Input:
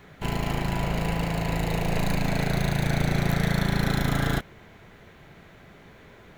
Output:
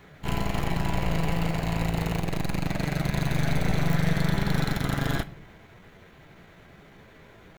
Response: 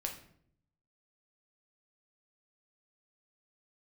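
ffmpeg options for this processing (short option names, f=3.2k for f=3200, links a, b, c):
-filter_complex "[0:a]atempo=0.84,aeval=exprs='(tanh(12.6*val(0)+0.65)-tanh(0.65))/12.6':c=same,asplit=2[a][b];[1:a]atrim=start_sample=2205[c];[b][c]afir=irnorm=-1:irlink=0,volume=-8.5dB[d];[a][d]amix=inputs=2:normalize=0"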